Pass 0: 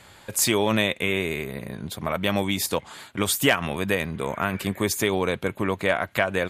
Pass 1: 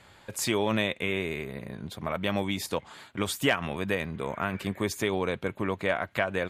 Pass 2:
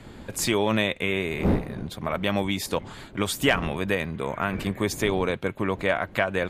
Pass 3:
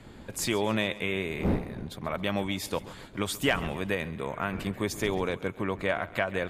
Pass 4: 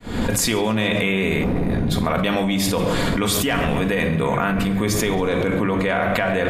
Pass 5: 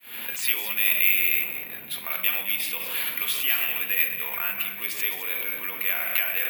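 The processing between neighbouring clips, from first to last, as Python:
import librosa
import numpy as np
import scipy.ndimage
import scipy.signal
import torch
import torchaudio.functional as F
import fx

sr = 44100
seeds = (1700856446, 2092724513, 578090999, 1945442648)

y1 = fx.high_shelf(x, sr, hz=7200.0, db=-10.0)
y1 = y1 * 10.0 ** (-4.5 / 20.0)
y2 = fx.dmg_wind(y1, sr, seeds[0], corner_hz=290.0, level_db=-39.0)
y2 = y2 * 10.0 ** (3.5 / 20.0)
y3 = fx.echo_feedback(y2, sr, ms=135, feedback_pct=51, wet_db=-18)
y3 = y3 * 10.0 ** (-4.5 / 20.0)
y4 = fx.fade_in_head(y3, sr, length_s=1.28)
y4 = fx.room_shoebox(y4, sr, seeds[1], volume_m3=2000.0, walls='furnished', distance_m=1.8)
y4 = fx.env_flatten(y4, sr, amount_pct=100)
y5 = fx.bandpass_q(y4, sr, hz=2600.0, q=3.8)
y5 = y5 + 10.0 ** (-11.0 / 20.0) * np.pad(y5, (int(213 * sr / 1000.0), 0))[:len(y5)]
y5 = (np.kron(y5[::3], np.eye(3)[0]) * 3)[:len(y5)]
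y5 = y5 * 10.0 ** (3.0 / 20.0)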